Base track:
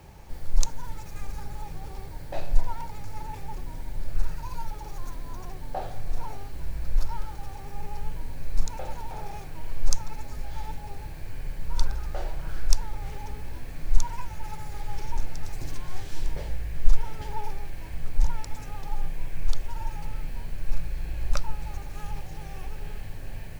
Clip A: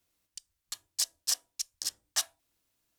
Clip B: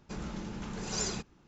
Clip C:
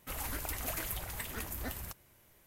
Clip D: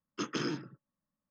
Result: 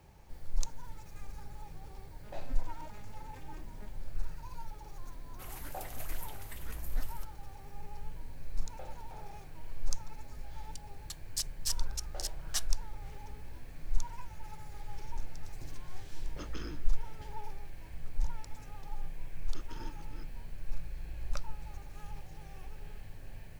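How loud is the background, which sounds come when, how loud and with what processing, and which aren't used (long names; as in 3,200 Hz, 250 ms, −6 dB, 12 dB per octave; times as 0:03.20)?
base track −10 dB
0:02.16: mix in C −12.5 dB + vocoder with an arpeggio as carrier major triad, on G#3, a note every 244 ms
0:05.32: mix in C −8.5 dB
0:10.38: mix in A −5.5 dB
0:16.20: mix in D −11 dB
0:19.36: mix in D −17.5 dB + delay that plays each chunk backwards 219 ms, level −3.5 dB
not used: B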